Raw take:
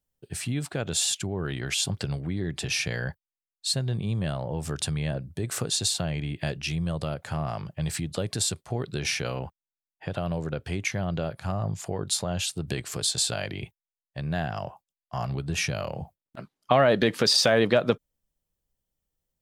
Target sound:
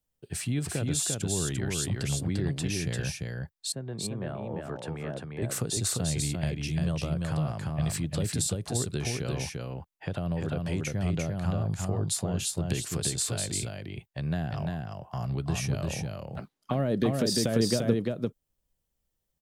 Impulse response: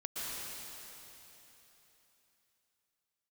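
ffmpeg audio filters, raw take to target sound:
-filter_complex "[0:a]asettb=1/sr,asplit=3[a][b][c];[a]atrim=end=3.724[d];[b]atrim=start=3.72:end=5.42,asetpts=PTS-STARTPTS,afade=t=in:d=0.004:c=qsin,afade=t=out:st=1.696:d=0.004:c=qsin,acrossover=split=230 2100:gain=0.224 1 0.1[e][f][g];[e][f][g]amix=inputs=3:normalize=0[h];[c]atrim=start=5.416[i];[d][h]acrossfade=d=0.004:c1=hsin:c2=qsin[j];[j][i]acrossfade=d=0.004:c1=qsin:c2=hsin,acrossover=split=400|6800[k][l][m];[l]acompressor=threshold=-38dB:ratio=6[n];[k][n][m]amix=inputs=3:normalize=0,aecho=1:1:346:0.708"

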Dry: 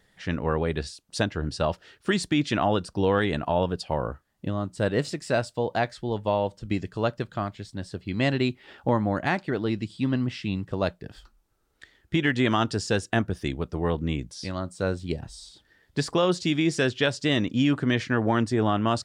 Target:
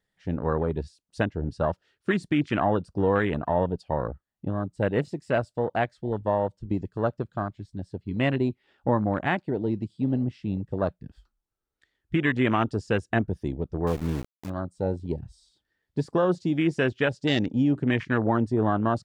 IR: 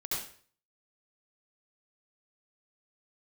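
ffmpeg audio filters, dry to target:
-filter_complex "[0:a]afwtdn=0.0316,asettb=1/sr,asplit=3[a][b][c];[a]atrim=end=13.874[d];[b]atrim=start=13.87:end=14.5,asetpts=PTS-STARTPTS,afade=t=in:d=0.004:c=qsin,afade=t=out:st=0.626:d=0.004:c=qsin,aeval=exprs='val(0)*gte(abs(val(0)),0.02)':c=same[e];[c]atrim=start=14.496[f];[d][e]acrossfade=d=0.004:c1=hsin:c2=qsin[g];[g][f]acrossfade=d=0.004:c1=qsin:c2=hsin"

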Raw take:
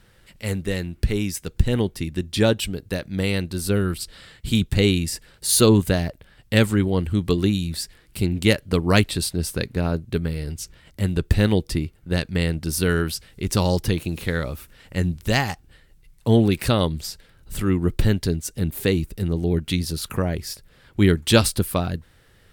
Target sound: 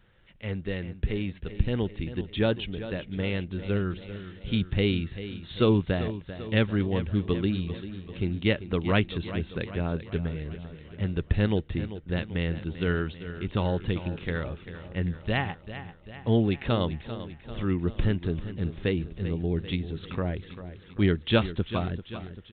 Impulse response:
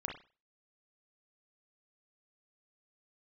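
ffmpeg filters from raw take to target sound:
-filter_complex "[0:a]asplit=2[a][b];[b]aecho=0:1:392|784|1176|1568|1960|2352:0.237|0.135|0.077|0.0439|0.025|0.0143[c];[a][c]amix=inputs=2:normalize=0,aresample=8000,aresample=44100,volume=-6.5dB"

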